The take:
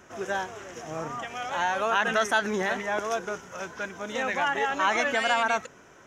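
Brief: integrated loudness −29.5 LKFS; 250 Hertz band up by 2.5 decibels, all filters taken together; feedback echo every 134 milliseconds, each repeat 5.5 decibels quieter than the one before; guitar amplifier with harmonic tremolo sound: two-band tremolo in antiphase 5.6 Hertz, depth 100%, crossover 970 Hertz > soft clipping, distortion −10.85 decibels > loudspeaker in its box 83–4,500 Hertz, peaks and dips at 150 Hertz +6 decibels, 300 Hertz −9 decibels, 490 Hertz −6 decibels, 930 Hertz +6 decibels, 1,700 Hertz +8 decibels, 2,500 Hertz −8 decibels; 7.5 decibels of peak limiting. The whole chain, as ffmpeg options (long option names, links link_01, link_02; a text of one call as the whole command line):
ffmpeg -i in.wav -filter_complex "[0:a]equalizer=frequency=250:width_type=o:gain=5,alimiter=limit=-18dB:level=0:latency=1,aecho=1:1:134|268|402|536|670|804|938:0.531|0.281|0.149|0.079|0.0419|0.0222|0.0118,acrossover=split=970[link_01][link_02];[link_01]aeval=exprs='val(0)*(1-1/2+1/2*cos(2*PI*5.6*n/s))':channel_layout=same[link_03];[link_02]aeval=exprs='val(0)*(1-1/2-1/2*cos(2*PI*5.6*n/s))':channel_layout=same[link_04];[link_03][link_04]amix=inputs=2:normalize=0,asoftclip=threshold=-31dB,highpass=83,equalizer=frequency=150:width_type=q:width=4:gain=6,equalizer=frequency=300:width_type=q:width=4:gain=-9,equalizer=frequency=490:width_type=q:width=4:gain=-6,equalizer=frequency=930:width_type=q:width=4:gain=6,equalizer=frequency=1700:width_type=q:width=4:gain=8,equalizer=frequency=2500:width_type=q:width=4:gain=-8,lowpass=frequency=4500:width=0.5412,lowpass=frequency=4500:width=1.3066,volume=4.5dB" out.wav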